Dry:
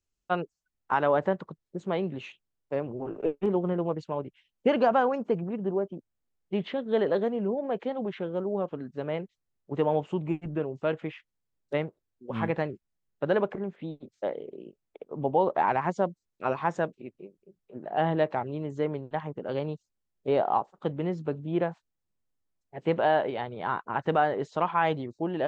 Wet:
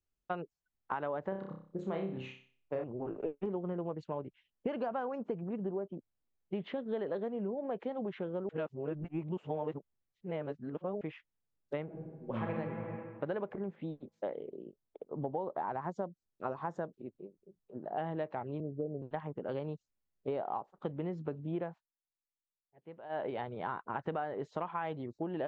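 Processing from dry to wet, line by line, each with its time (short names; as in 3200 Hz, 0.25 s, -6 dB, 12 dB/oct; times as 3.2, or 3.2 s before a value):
1.29–2.84 flutter echo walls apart 5.3 m, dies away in 0.44 s
8.49–11.01 reverse
11.84–12.53 reverb throw, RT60 1.8 s, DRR -2.5 dB
14.51–17.98 bell 2400 Hz -12 dB 0.71 oct
18.6–19.02 Chebyshev low-pass 720 Hz, order 6
21.69–23.26 dip -21 dB, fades 0.17 s
whole clip: high shelf 3900 Hz -11 dB; compressor, threshold -30 dBFS; gain -3 dB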